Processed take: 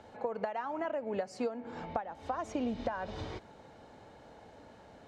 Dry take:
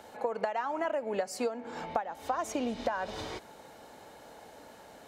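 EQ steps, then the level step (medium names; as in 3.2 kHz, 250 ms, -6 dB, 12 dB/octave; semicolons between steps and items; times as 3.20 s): distance through air 90 m; peaking EQ 96 Hz +3.5 dB 1 oct; bass shelf 260 Hz +8 dB; -4.5 dB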